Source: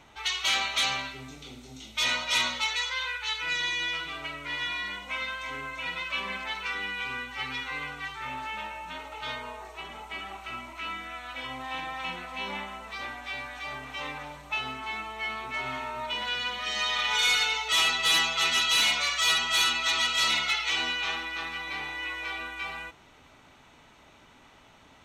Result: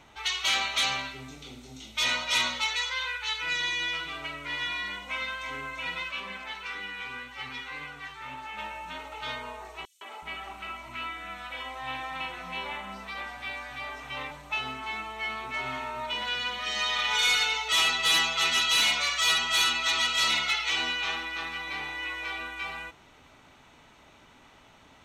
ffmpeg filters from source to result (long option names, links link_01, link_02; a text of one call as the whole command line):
ffmpeg -i in.wav -filter_complex "[0:a]asplit=3[link_01][link_02][link_03];[link_01]afade=type=out:start_time=6.09:duration=0.02[link_04];[link_02]flanger=delay=5.4:depth=7.7:regen=69:speed=1.9:shape=sinusoidal,afade=type=in:start_time=6.09:duration=0.02,afade=type=out:start_time=8.57:duration=0.02[link_05];[link_03]afade=type=in:start_time=8.57:duration=0.02[link_06];[link_04][link_05][link_06]amix=inputs=3:normalize=0,asettb=1/sr,asplit=3[link_07][link_08][link_09];[link_07]atrim=end=9.854[link_10];[link_08]atrim=start=9.85:end=14.31,asetpts=PTS-STARTPTS,afade=type=in:duration=0.004:curve=qsin,afade=type=out:start_time=4.456:duration=0.004:curve=qsin,acrossover=split=290|5500[link_11][link_12][link_13];[link_12]adelay=160[link_14];[link_11]adelay=370[link_15];[link_15][link_14][link_13]amix=inputs=3:normalize=0,atrim=end_sample=196686[link_16];[link_09]atrim=start=14.306[link_17];[link_10][link_16]acrossfade=duration=0.004:curve1=hsin:curve2=qsin[link_18];[link_18][link_17]acrossfade=duration=0.004:curve1=qsin:curve2=hsin" out.wav